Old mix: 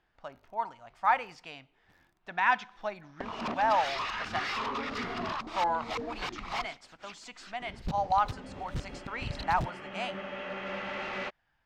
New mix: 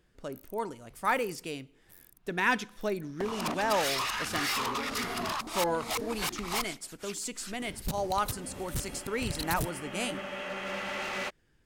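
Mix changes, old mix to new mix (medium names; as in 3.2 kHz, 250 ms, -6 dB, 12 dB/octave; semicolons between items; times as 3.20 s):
speech: add resonant low shelf 560 Hz +10.5 dB, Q 3; master: remove distance through air 190 m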